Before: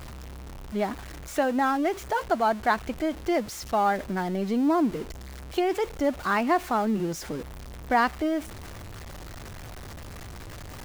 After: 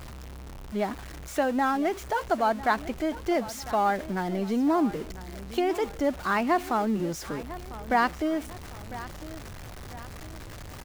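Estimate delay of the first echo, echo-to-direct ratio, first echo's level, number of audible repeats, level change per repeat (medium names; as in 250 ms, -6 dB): 1000 ms, -15.5 dB, -16.0 dB, 2, -7.0 dB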